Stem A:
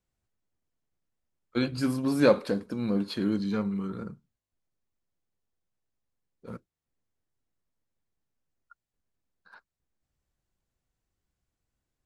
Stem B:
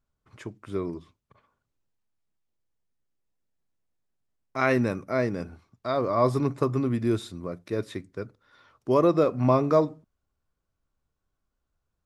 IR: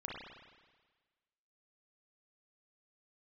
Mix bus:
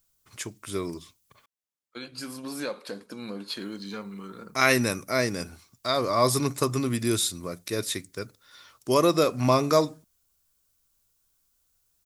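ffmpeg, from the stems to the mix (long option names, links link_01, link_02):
-filter_complex "[0:a]highpass=frequency=440:poles=1,acompressor=threshold=-32dB:ratio=3,adelay=400,volume=-1dB[link_01];[1:a]crystalizer=i=4.5:c=0,volume=-1.5dB,asplit=3[link_02][link_03][link_04];[link_02]atrim=end=1.46,asetpts=PTS-STARTPTS,afade=type=out:start_time=1.456:duration=0.004:curve=hsin[link_05];[link_03]atrim=start=1.46:end=3.58,asetpts=PTS-STARTPTS,volume=0[link_06];[link_04]atrim=start=3.58,asetpts=PTS-STARTPTS,afade=type=in:duration=0.004:curve=hsin[link_07];[link_05][link_06][link_07]concat=n=3:v=0:a=1,asplit=2[link_08][link_09];[link_09]apad=whole_len=549270[link_10];[link_01][link_10]sidechaincompress=threshold=-46dB:ratio=4:attack=46:release=1350[link_11];[link_11][link_08]amix=inputs=2:normalize=0,highshelf=frequency=2700:gain=8.5"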